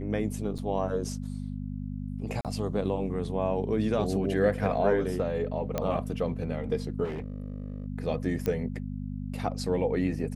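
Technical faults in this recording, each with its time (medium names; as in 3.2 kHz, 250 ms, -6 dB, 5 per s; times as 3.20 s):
hum 50 Hz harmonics 5 -35 dBFS
0.58–0.59 s: dropout 5.7 ms
2.41–2.45 s: dropout 37 ms
5.78 s: pop -15 dBFS
7.04–7.86 s: clipped -31 dBFS
8.46 s: pop -16 dBFS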